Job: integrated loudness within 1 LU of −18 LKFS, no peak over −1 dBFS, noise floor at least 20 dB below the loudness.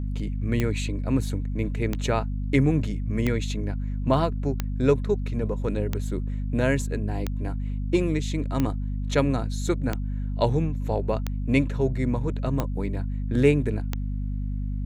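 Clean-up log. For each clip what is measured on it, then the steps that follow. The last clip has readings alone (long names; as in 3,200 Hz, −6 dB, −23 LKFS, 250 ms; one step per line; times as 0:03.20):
number of clicks 11; mains hum 50 Hz; hum harmonics up to 250 Hz; level of the hum −26 dBFS; integrated loudness −26.5 LKFS; sample peak −7.0 dBFS; target loudness −18.0 LKFS
→ click removal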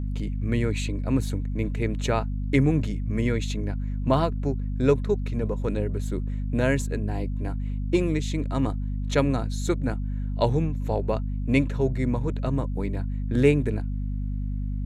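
number of clicks 0; mains hum 50 Hz; hum harmonics up to 250 Hz; level of the hum −26 dBFS
→ hum removal 50 Hz, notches 5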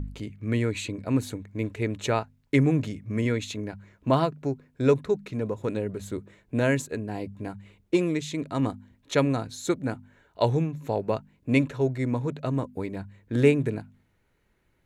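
mains hum none found; integrated loudness −27.5 LKFS; sample peak −8.0 dBFS; target loudness −18.0 LKFS
→ level +9.5 dB
brickwall limiter −1 dBFS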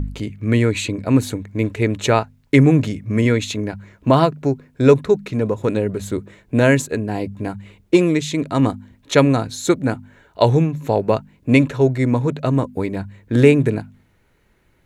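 integrated loudness −18.5 LKFS; sample peak −1.0 dBFS; background noise floor −59 dBFS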